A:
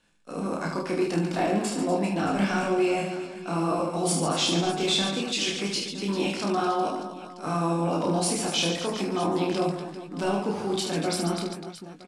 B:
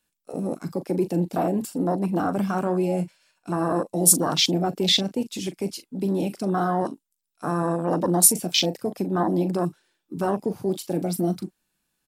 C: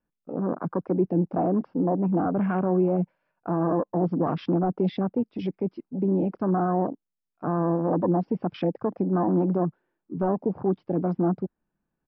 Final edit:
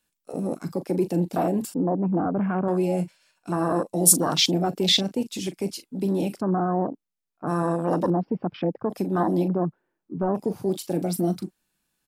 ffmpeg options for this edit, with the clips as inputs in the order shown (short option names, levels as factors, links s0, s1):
-filter_complex "[2:a]asplit=4[s0][s1][s2][s3];[1:a]asplit=5[s4][s5][s6][s7][s8];[s4]atrim=end=1.742[s9];[s0]atrim=start=1.738:end=2.682[s10];[s5]atrim=start=2.678:end=6.42[s11];[s1]atrim=start=6.36:end=7.52[s12];[s6]atrim=start=7.46:end=8.102[s13];[s2]atrim=start=8.098:end=8.902[s14];[s7]atrim=start=8.898:end=9.482[s15];[s3]atrim=start=9.478:end=10.352[s16];[s8]atrim=start=10.348[s17];[s9][s10]acrossfade=d=0.004:c1=hsin:c2=hsin[s18];[s18][s11]acrossfade=d=0.004:c1=hsin:c2=hsin[s19];[s19][s12]acrossfade=d=0.06:c1=tri:c2=tri[s20];[s20][s13]acrossfade=d=0.06:c1=tri:c2=tri[s21];[s21][s14]acrossfade=d=0.004:c1=hsin:c2=hsin[s22];[s22][s15]acrossfade=d=0.004:c1=hsin:c2=hsin[s23];[s23][s16]acrossfade=d=0.004:c1=hsin:c2=hsin[s24];[s24][s17]acrossfade=d=0.004:c1=hsin:c2=hsin"